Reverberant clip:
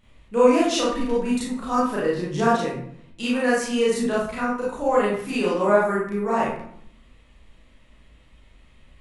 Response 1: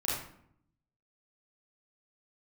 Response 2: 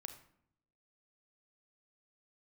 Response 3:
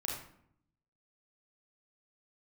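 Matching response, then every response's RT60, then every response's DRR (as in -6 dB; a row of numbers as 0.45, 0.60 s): 1; 0.65, 0.70, 0.70 s; -7.5, 6.5, -3.0 dB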